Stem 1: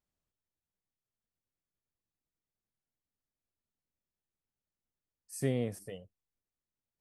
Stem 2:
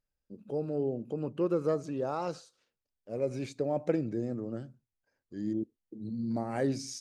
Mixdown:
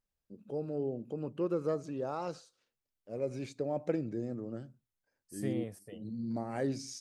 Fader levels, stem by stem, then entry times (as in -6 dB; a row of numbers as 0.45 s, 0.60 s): -6.0 dB, -3.5 dB; 0.00 s, 0.00 s